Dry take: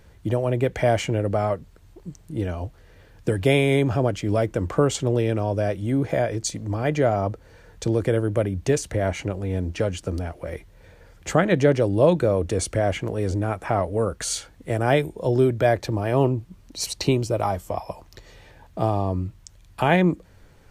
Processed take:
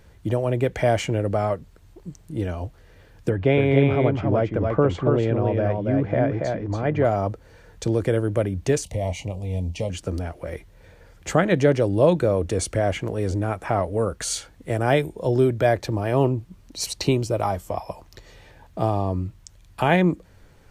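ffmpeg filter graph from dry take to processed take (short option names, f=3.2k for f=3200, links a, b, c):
-filter_complex "[0:a]asettb=1/sr,asplit=3[a][b][c];[a]atrim=end=3.294[d];[b]atrim=start=3.29:end=7.05,asetpts=PTS-STARTPTS,afade=t=in:d=0.004:c=qsin,afade=t=out:st=3.756:d=0.004:c=qsin,lowpass=2.2k,aecho=1:1:282:0.668,atrim=end_sample=165816[e];[c]atrim=start=7.046[f];[d][e]acrossfade=d=0.004:c1=hsin:c2=qsin[g];[g][f]acrossfade=d=0.004:c1=qsin:c2=hsin,asettb=1/sr,asplit=3[h][i][j];[h]atrim=end=8.844[k];[i]atrim=start=8.84:end=9.9,asetpts=PTS-STARTPTS,afade=t=in:d=0.004:c=qsin,afade=t=out:st=1.056:d=0.004:c=qsin,asuperstop=centerf=1500:order=4:qfactor=1.1,equalizer=f=350:w=2:g=-13,asplit=2[l][m];[m]adelay=23,volume=-12.5dB[n];[l][n]amix=inputs=2:normalize=0,atrim=end_sample=46746[o];[j]atrim=start=9.896[p];[k][o]acrossfade=d=0.004:c1=hsin:c2=qsin[q];[q][p]acrossfade=d=0.004:c1=qsin:c2=hsin"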